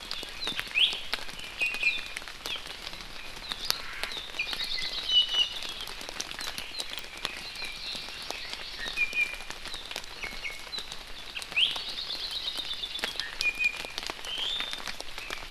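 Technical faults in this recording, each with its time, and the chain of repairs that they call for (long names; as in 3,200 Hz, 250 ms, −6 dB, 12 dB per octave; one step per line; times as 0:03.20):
0:06.99: click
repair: click removal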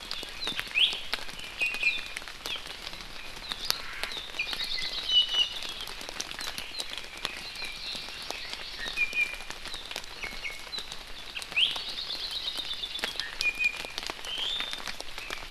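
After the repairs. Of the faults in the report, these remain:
none of them is left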